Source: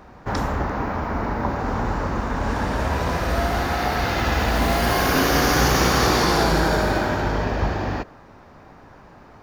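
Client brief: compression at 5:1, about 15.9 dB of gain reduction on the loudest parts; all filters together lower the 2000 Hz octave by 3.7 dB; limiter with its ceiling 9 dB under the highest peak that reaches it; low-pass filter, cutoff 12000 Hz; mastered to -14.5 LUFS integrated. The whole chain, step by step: LPF 12000 Hz; bell 2000 Hz -5 dB; compressor 5:1, threshold -34 dBFS; gain +26.5 dB; limiter -5 dBFS

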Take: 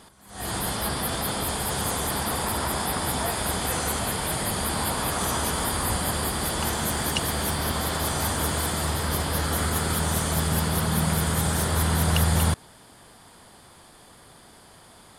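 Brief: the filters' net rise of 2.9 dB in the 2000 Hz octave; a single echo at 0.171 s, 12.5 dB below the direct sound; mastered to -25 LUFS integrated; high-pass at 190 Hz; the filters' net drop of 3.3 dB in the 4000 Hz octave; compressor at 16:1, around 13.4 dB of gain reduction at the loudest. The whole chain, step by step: HPF 190 Hz; bell 2000 Hz +5 dB; bell 4000 Hz -6 dB; compressor 16:1, threshold -35 dBFS; echo 0.171 s -12.5 dB; gain +12.5 dB

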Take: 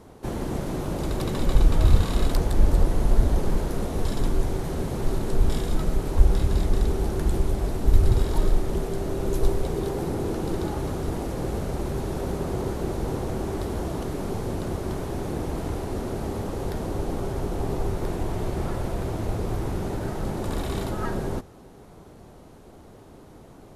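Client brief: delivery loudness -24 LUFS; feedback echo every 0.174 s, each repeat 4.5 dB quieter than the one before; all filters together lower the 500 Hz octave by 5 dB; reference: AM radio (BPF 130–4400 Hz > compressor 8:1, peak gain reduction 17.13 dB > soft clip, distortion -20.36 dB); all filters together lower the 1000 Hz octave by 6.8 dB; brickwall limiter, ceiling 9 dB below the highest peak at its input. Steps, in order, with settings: bell 500 Hz -5.5 dB; bell 1000 Hz -7 dB; limiter -13.5 dBFS; BPF 130–4400 Hz; feedback echo 0.174 s, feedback 60%, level -4.5 dB; compressor 8:1, threshold -43 dBFS; soft clip -38 dBFS; gain +24 dB

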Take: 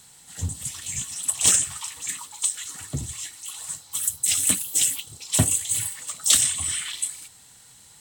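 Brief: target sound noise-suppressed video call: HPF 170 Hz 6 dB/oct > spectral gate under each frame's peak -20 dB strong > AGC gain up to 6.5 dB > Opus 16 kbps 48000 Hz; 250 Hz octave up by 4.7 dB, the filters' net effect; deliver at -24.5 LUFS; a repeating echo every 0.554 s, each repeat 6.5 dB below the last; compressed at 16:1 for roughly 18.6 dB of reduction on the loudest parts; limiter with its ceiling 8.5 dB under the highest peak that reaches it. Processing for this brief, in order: bell 250 Hz +8 dB; compressor 16:1, threshold -31 dBFS; limiter -25 dBFS; HPF 170 Hz 6 dB/oct; feedback echo 0.554 s, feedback 47%, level -6.5 dB; spectral gate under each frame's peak -20 dB strong; AGC gain up to 6.5 dB; gain +11.5 dB; Opus 16 kbps 48000 Hz

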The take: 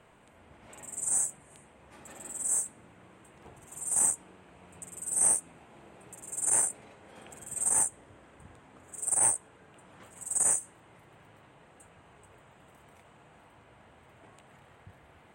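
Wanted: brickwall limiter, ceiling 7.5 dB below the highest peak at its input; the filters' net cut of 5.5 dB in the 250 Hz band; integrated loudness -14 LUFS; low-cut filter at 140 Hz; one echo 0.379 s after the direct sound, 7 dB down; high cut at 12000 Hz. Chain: HPF 140 Hz; LPF 12000 Hz; bell 250 Hz -7 dB; limiter -21 dBFS; echo 0.379 s -7 dB; gain +18.5 dB

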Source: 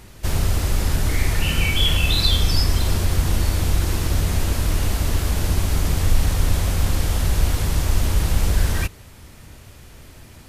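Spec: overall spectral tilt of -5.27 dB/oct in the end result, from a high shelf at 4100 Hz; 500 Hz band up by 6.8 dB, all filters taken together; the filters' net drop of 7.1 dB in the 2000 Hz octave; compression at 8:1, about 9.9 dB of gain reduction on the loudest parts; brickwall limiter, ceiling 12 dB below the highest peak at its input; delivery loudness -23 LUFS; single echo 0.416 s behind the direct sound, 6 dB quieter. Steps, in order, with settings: bell 500 Hz +9 dB; bell 2000 Hz -9 dB; high shelf 4100 Hz -3.5 dB; compressor 8:1, threshold -22 dBFS; limiter -26 dBFS; echo 0.416 s -6 dB; gain +12.5 dB

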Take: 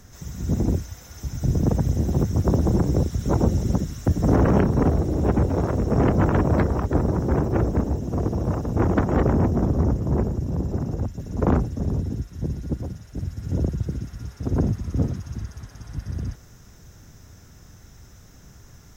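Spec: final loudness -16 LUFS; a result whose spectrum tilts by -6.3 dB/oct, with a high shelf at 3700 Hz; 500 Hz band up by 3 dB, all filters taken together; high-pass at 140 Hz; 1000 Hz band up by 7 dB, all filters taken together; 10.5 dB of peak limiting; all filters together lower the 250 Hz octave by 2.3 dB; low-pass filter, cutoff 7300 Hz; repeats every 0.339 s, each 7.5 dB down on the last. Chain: HPF 140 Hz; LPF 7300 Hz; bell 250 Hz -3.5 dB; bell 500 Hz +3 dB; bell 1000 Hz +8.5 dB; high shelf 3700 Hz -5.5 dB; limiter -14 dBFS; feedback echo 0.339 s, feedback 42%, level -7.5 dB; gain +10 dB

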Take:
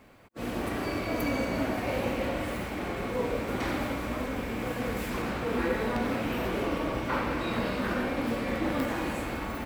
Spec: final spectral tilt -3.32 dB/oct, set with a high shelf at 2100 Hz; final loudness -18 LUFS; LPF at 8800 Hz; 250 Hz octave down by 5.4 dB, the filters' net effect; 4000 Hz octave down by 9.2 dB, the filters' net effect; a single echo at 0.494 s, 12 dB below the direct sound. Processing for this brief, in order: LPF 8800 Hz; bell 250 Hz -6.5 dB; high shelf 2100 Hz -6 dB; bell 4000 Hz -6.5 dB; echo 0.494 s -12 dB; gain +16 dB

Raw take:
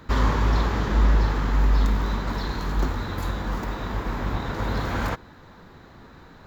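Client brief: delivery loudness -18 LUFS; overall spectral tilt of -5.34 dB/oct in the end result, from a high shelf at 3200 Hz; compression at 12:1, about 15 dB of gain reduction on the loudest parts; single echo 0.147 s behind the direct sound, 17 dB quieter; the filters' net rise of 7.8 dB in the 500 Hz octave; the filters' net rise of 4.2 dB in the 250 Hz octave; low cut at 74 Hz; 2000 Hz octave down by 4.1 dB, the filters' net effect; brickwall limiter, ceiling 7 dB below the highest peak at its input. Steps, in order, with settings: HPF 74 Hz; bell 250 Hz +3 dB; bell 500 Hz +9 dB; bell 2000 Hz -4.5 dB; high shelf 3200 Hz -6 dB; compressor 12:1, threshold -33 dBFS; limiter -30 dBFS; echo 0.147 s -17 dB; gain +22 dB

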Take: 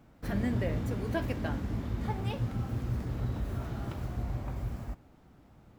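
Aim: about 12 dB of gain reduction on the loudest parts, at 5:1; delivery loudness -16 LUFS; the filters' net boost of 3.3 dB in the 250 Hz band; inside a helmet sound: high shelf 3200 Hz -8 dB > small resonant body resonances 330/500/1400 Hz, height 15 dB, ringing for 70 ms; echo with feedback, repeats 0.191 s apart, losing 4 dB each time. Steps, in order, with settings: bell 250 Hz +4 dB; compressor 5:1, threshold -38 dBFS; high shelf 3200 Hz -8 dB; feedback echo 0.191 s, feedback 63%, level -4 dB; small resonant body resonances 330/500/1400 Hz, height 15 dB, ringing for 70 ms; gain +20 dB

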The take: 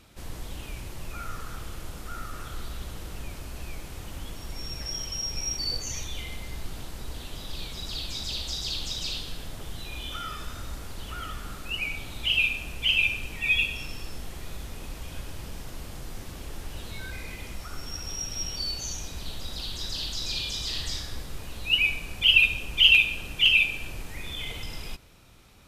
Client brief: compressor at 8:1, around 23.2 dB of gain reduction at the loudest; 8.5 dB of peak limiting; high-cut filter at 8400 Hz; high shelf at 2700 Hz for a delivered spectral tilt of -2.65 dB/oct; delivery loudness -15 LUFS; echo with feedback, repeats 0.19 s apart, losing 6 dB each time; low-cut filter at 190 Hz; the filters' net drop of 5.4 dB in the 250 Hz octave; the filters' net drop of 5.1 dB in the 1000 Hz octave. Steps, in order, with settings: HPF 190 Hz; LPF 8400 Hz; bell 250 Hz -4.5 dB; bell 1000 Hz -8.5 dB; high shelf 2700 Hz +4.5 dB; compressor 8:1, threshold -37 dBFS; limiter -35 dBFS; feedback echo 0.19 s, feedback 50%, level -6 dB; gain +26 dB

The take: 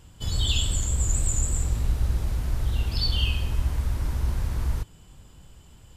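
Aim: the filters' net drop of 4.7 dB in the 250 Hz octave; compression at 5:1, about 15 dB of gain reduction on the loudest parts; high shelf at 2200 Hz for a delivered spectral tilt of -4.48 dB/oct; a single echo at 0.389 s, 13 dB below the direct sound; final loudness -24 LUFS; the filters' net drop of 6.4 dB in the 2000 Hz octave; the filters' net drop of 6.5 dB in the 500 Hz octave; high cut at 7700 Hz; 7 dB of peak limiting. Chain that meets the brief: LPF 7700 Hz; bell 250 Hz -6 dB; bell 500 Hz -6 dB; bell 2000 Hz -4.5 dB; high shelf 2200 Hz -6 dB; compressor 5:1, threshold -37 dBFS; limiter -35 dBFS; echo 0.389 s -13 dB; gain +22 dB

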